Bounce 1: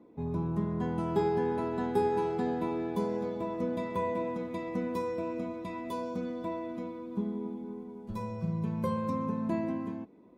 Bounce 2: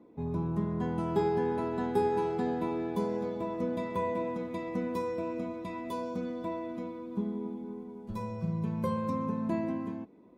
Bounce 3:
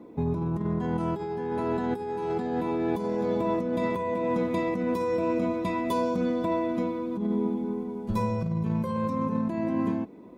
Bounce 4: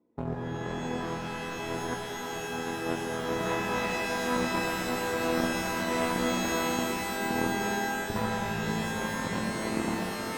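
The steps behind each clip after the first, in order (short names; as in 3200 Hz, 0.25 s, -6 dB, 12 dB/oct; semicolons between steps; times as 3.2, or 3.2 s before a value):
nothing audible
negative-ratio compressor -35 dBFS, ratio -1; gain +7.5 dB
median filter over 9 samples; added harmonics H 3 -10 dB, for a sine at -16 dBFS; shimmer reverb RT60 3.6 s, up +12 st, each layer -2 dB, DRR -1 dB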